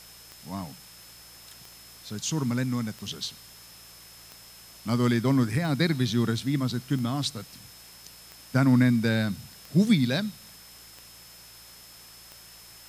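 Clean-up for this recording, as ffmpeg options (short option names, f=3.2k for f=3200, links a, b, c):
-af "adeclick=t=4,bandreject=f=56.9:t=h:w=4,bandreject=f=113.8:t=h:w=4,bandreject=f=170.7:t=h:w=4,bandreject=f=5.2k:w=30,afftdn=nr=22:nf=-49"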